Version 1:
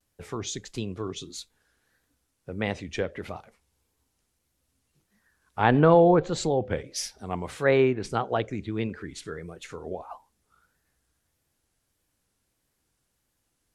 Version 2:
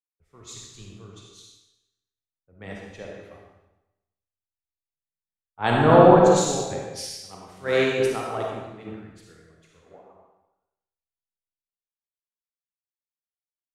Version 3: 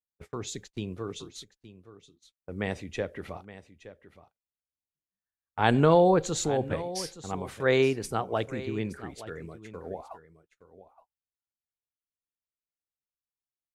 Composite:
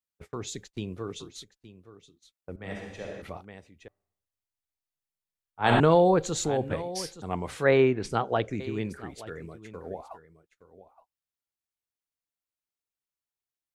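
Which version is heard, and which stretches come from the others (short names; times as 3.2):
3
2.56–3.22 from 2
3.88–5.8 from 2
7.22–8.6 from 1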